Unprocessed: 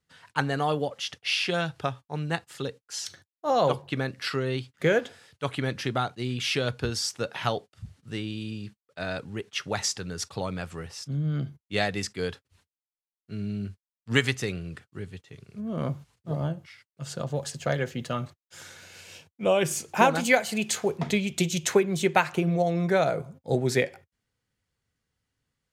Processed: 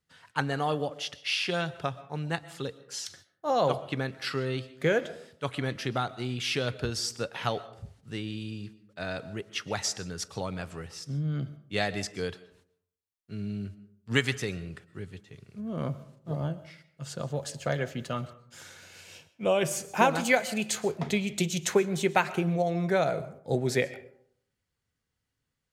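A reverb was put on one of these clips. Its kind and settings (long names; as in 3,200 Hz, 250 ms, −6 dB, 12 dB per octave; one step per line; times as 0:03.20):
comb and all-pass reverb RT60 0.64 s, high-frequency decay 0.45×, pre-delay 85 ms, DRR 16.5 dB
level −2.5 dB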